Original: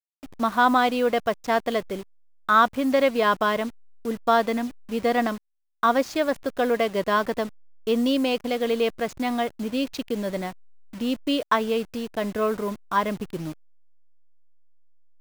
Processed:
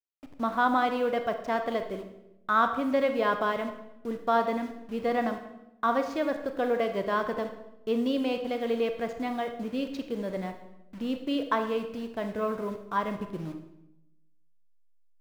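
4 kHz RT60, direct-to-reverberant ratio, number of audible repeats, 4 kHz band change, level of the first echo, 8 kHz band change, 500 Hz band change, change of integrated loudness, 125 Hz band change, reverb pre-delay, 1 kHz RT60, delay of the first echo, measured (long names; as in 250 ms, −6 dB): 0.70 s, 6.5 dB, no echo audible, −9.0 dB, no echo audible, below −10 dB, −4.5 dB, −5.5 dB, −4.5 dB, 28 ms, 0.80 s, no echo audible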